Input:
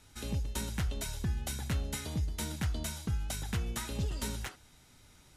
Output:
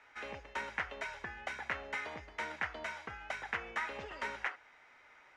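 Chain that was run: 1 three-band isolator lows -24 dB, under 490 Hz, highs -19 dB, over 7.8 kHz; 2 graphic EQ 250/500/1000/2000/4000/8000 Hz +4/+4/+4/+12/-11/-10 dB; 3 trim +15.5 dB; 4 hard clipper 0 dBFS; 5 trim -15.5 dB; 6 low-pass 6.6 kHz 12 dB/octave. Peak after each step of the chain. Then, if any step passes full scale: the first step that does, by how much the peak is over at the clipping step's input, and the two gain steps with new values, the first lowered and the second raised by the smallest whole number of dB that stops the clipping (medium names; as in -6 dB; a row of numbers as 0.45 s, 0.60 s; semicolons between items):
-26.5 dBFS, -20.5 dBFS, -5.0 dBFS, -5.0 dBFS, -20.5 dBFS, -20.5 dBFS; nothing clips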